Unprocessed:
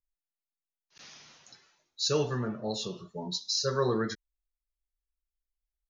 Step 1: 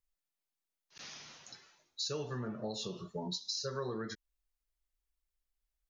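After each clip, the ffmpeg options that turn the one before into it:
ffmpeg -i in.wav -af "acompressor=threshold=-38dB:ratio=6,volume=2dB" out.wav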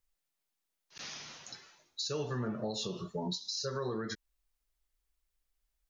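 ffmpeg -i in.wav -af "alimiter=level_in=7dB:limit=-24dB:level=0:latency=1:release=103,volume=-7dB,volume=4.5dB" out.wav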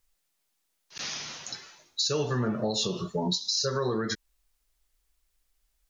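ffmpeg -i in.wav -af "equalizer=frequency=7800:width_type=o:width=2.5:gain=2.5,volume=7.5dB" out.wav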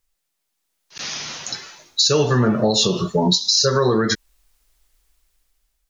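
ffmpeg -i in.wav -af "dynaudnorm=framelen=470:gausssize=5:maxgain=11.5dB" out.wav

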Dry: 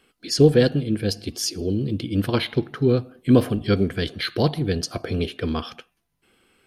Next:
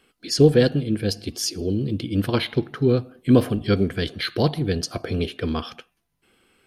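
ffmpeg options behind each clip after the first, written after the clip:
ffmpeg -i in.wav -af anull out.wav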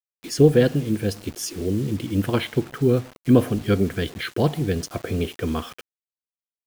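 ffmpeg -i in.wav -af "equalizer=frequency=4500:width_type=o:width=0.54:gain=-11,acrusher=bits=6:mix=0:aa=0.000001" out.wav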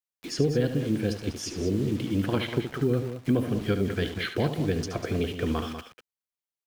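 ffmpeg -i in.wav -filter_complex "[0:a]acrossover=split=240|6500[link_01][link_02][link_03];[link_01]acompressor=threshold=-26dB:ratio=4[link_04];[link_02]acompressor=threshold=-24dB:ratio=4[link_05];[link_03]acompressor=threshold=-55dB:ratio=4[link_06];[link_04][link_05][link_06]amix=inputs=3:normalize=0,aecho=1:1:72.89|195.3:0.316|0.316,volume=-1.5dB" out.wav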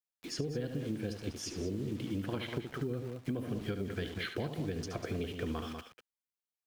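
ffmpeg -i in.wav -af "acompressor=threshold=-26dB:ratio=6,volume=-6dB" out.wav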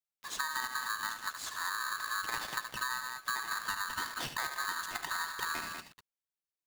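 ffmpeg -i in.wav -af "aeval=exprs='val(0)*sgn(sin(2*PI*1400*n/s))':channel_layout=same" out.wav

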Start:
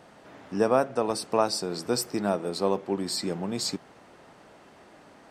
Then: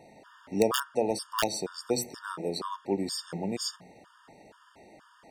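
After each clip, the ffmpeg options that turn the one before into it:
ffmpeg -i in.wav -af "bandreject=frequency=60:width_type=h:width=6,bandreject=frequency=120:width_type=h:width=6,bandreject=frequency=180:width_type=h:width=6,bandreject=frequency=240:width_type=h:width=6,aeval=exprs='(mod(3.55*val(0)+1,2)-1)/3.55':channel_layout=same,afftfilt=real='re*gt(sin(2*PI*2.1*pts/sr)*(1-2*mod(floor(b*sr/1024/920),2)),0)':imag='im*gt(sin(2*PI*2.1*pts/sr)*(1-2*mod(floor(b*sr/1024/920),2)),0)':win_size=1024:overlap=0.75" out.wav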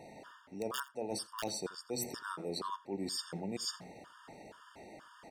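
ffmpeg -i in.wav -af "areverse,acompressor=threshold=-37dB:ratio=8,areverse,aecho=1:1:84:0.0841,volume=1.5dB" out.wav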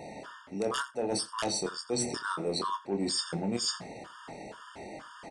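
ffmpeg -i in.wav -filter_complex "[0:a]asoftclip=type=tanh:threshold=-30dB,aresample=22050,aresample=44100,asplit=2[link_01][link_02];[link_02]adelay=25,volume=-8dB[link_03];[link_01][link_03]amix=inputs=2:normalize=0,volume=8dB" out.wav

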